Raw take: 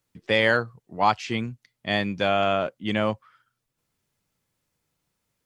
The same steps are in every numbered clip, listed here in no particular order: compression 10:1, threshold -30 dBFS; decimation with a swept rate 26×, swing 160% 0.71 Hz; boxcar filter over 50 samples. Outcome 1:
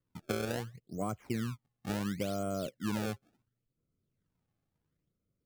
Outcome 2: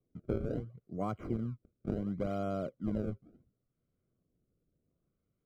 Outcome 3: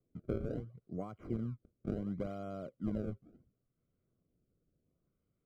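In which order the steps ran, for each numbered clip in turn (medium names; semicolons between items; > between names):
boxcar filter > decimation with a swept rate > compression; decimation with a swept rate > boxcar filter > compression; decimation with a swept rate > compression > boxcar filter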